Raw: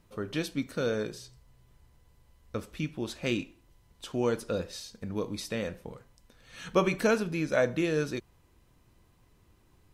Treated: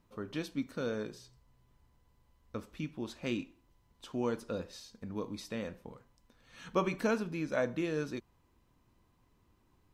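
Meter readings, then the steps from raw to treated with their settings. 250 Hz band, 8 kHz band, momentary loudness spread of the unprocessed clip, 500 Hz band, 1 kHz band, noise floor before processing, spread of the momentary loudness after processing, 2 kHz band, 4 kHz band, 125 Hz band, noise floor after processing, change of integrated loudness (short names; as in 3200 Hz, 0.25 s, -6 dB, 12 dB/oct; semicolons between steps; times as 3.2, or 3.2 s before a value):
-4.5 dB, -9.0 dB, 13 LU, -6.5 dB, -4.0 dB, -64 dBFS, 14 LU, -7.0 dB, -7.5 dB, -6.5 dB, -70 dBFS, -5.5 dB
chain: fifteen-band EQ 250 Hz +5 dB, 1000 Hz +5 dB, 10000 Hz -4 dB; gain -7.5 dB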